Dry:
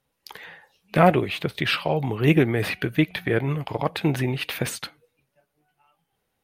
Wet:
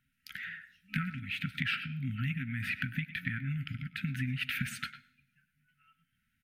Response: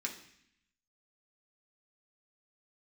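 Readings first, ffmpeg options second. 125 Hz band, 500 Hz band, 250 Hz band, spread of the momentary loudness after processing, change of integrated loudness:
−10.0 dB, below −40 dB, −14.5 dB, 9 LU, −12.5 dB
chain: -filter_complex "[0:a]highshelf=frequency=3200:width_type=q:width=1.5:gain=-7,asplit=2[link_01][link_02];[link_02]adelay=100,highpass=300,lowpass=3400,asoftclip=type=hard:threshold=-9dB,volume=-15dB[link_03];[link_01][link_03]amix=inputs=2:normalize=0,acompressor=threshold=-29dB:ratio=6,asplit=2[link_04][link_05];[1:a]atrim=start_sample=2205,adelay=113[link_06];[link_05][link_06]afir=irnorm=-1:irlink=0,volume=-20.5dB[link_07];[link_04][link_07]amix=inputs=2:normalize=0,afftfilt=real='re*(1-between(b*sr/4096,270,1300))':imag='im*(1-between(b*sr/4096,270,1300))':win_size=4096:overlap=0.75"

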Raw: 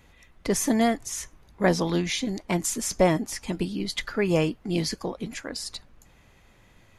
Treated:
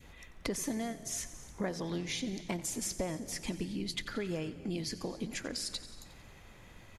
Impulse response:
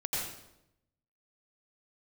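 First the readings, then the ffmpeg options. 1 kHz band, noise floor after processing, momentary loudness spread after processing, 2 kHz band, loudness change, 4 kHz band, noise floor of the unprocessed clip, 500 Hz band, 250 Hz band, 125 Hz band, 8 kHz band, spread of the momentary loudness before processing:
−15.0 dB, −56 dBFS, 17 LU, −10.5 dB, −10.5 dB, −7.0 dB, −58 dBFS, −13.5 dB, −11.0 dB, −11.5 dB, −7.5 dB, 12 LU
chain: -filter_complex "[0:a]acompressor=threshold=-36dB:ratio=6,asplit=2[link_01][link_02];[link_02]asplit=6[link_03][link_04][link_05][link_06][link_07][link_08];[link_03]adelay=90,afreqshift=-31,volume=-16dB[link_09];[link_04]adelay=180,afreqshift=-62,volume=-20dB[link_10];[link_05]adelay=270,afreqshift=-93,volume=-24dB[link_11];[link_06]adelay=360,afreqshift=-124,volume=-28dB[link_12];[link_07]adelay=450,afreqshift=-155,volume=-32.1dB[link_13];[link_08]adelay=540,afreqshift=-186,volume=-36.1dB[link_14];[link_09][link_10][link_11][link_12][link_13][link_14]amix=inputs=6:normalize=0[link_15];[link_01][link_15]amix=inputs=2:normalize=0,adynamicequalizer=threshold=0.00141:dfrequency=1000:dqfactor=1.1:tfrequency=1000:tqfactor=1.1:attack=5:release=100:ratio=0.375:range=2.5:mode=cutabove:tftype=bell,asplit=2[link_16][link_17];[1:a]atrim=start_sample=2205,adelay=140[link_18];[link_17][link_18]afir=irnorm=-1:irlink=0,volume=-21.5dB[link_19];[link_16][link_19]amix=inputs=2:normalize=0,volume=2dB"

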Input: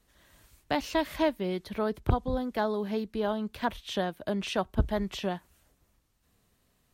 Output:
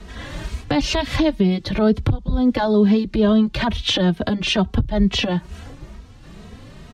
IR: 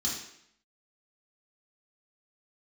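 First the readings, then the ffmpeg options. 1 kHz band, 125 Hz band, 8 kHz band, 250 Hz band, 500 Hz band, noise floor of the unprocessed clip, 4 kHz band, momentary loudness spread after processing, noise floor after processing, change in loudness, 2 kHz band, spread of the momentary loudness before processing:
+5.5 dB, +13.0 dB, +12.5 dB, +15.0 dB, +8.5 dB, −71 dBFS, +15.5 dB, 15 LU, −43 dBFS, +12.0 dB, +10.0 dB, 5 LU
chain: -filter_complex "[0:a]lowshelf=frequency=350:gain=9.5,acrossover=split=190|3000[link_01][link_02][link_03];[link_02]acompressor=threshold=-39dB:ratio=2[link_04];[link_01][link_04][link_03]amix=inputs=3:normalize=0,lowpass=4800,lowshelf=frequency=150:gain=-4,acompressor=threshold=-41dB:ratio=5,alimiter=level_in=35dB:limit=-1dB:release=50:level=0:latency=1,asplit=2[link_05][link_06];[link_06]adelay=2.8,afreqshift=2.2[link_07];[link_05][link_07]amix=inputs=2:normalize=1,volume=-5.5dB"

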